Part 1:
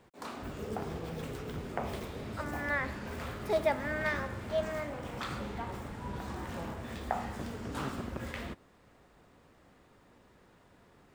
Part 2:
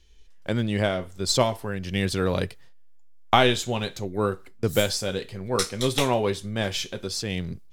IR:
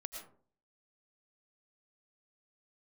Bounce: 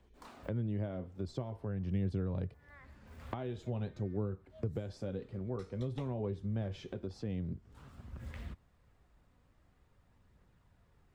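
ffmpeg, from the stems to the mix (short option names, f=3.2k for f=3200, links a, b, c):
-filter_complex "[0:a]asubboost=boost=4:cutoff=150,volume=-11.5dB[a];[1:a]acompressor=threshold=-23dB:ratio=6,bandpass=f=230:t=q:w=0.56:csg=0,volume=0.5dB,asplit=2[b][c];[c]apad=whole_len=491276[d];[a][d]sidechaincompress=threshold=-49dB:ratio=4:attack=21:release=621[e];[e][b]amix=inputs=2:normalize=0,acrossover=split=130[f][g];[g]acompressor=threshold=-43dB:ratio=2.5[h];[f][h]amix=inputs=2:normalize=0,aphaser=in_gain=1:out_gain=1:delay=4.1:decay=0.23:speed=0.48:type=triangular"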